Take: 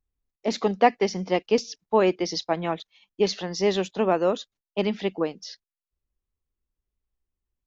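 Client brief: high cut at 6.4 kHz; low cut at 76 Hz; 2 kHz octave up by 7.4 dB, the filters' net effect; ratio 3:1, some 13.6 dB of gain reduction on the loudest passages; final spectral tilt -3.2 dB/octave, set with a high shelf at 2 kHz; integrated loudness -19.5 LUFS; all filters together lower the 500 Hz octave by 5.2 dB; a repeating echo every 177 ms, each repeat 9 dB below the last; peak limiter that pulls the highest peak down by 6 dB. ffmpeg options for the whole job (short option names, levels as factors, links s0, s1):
-af "highpass=76,lowpass=6400,equalizer=f=500:t=o:g=-7.5,highshelf=f=2000:g=7,equalizer=f=2000:t=o:g=5,acompressor=threshold=0.0282:ratio=3,alimiter=limit=0.0708:level=0:latency=1,aecho=1:1:177|354|531|708:0.355|0.124|0.0435|0.0152,volume=5.96"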